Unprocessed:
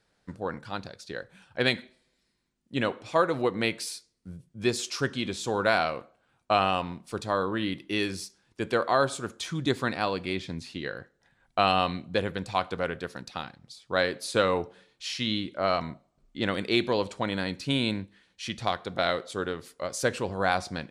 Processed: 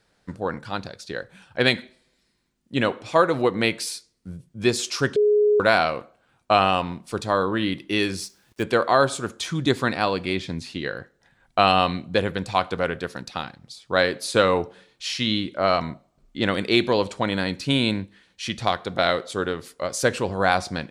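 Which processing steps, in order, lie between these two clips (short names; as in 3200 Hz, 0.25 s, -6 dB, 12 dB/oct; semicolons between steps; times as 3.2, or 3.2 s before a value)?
5.16–5.6 bleep 418 Hz -20 dBFS; 8.22–8.63 companded quantiser 6-bit; gain +5.5 dB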